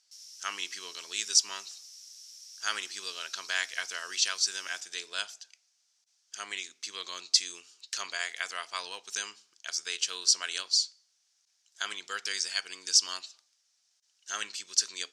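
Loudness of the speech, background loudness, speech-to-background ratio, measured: -31.0 LUFS, -47.0 LUFS, 16.0 dB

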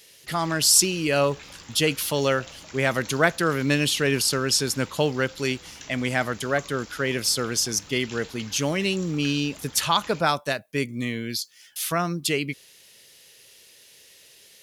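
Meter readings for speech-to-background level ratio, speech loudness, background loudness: 19.5 dB, -24.0 LUFS, -43.5 LUFS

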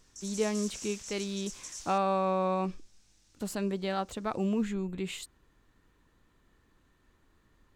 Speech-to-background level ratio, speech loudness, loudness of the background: 9.0 dB, -33.0 LUFS, -42.0 LUFS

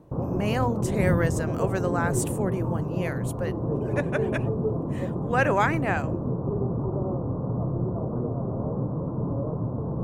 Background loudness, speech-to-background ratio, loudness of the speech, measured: -28.5 LUFS, -0.5 dB, -29.0 LUFS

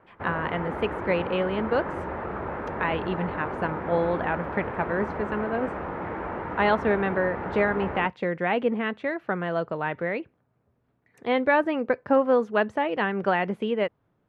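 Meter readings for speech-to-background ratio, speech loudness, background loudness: 6.0 dB, -27.0 LUFS, -33.0 LUFS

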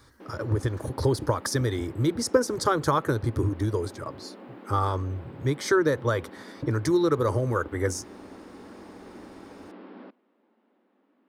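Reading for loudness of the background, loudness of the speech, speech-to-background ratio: -46.0 LUFS, -26.5 LUFS, 19.5 dB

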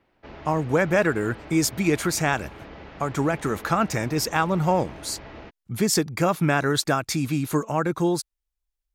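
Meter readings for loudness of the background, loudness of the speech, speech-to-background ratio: -42.5 LUFS, -24.0 LUFS, 18.5 dB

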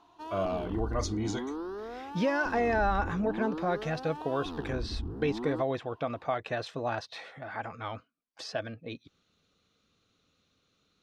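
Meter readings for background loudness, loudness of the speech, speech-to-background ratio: -39.0 LUFS, -33.0 LUFS, 6.0 dB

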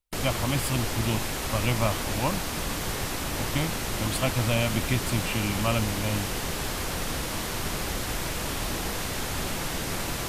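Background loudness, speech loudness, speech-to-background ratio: -30.0 LUFS, -29.5 LUFS, 0.5 dB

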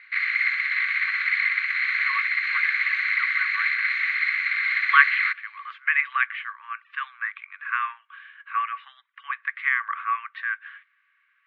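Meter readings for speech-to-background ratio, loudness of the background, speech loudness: -5.0 dB, -22.0 LUFS, -27.0 LUFS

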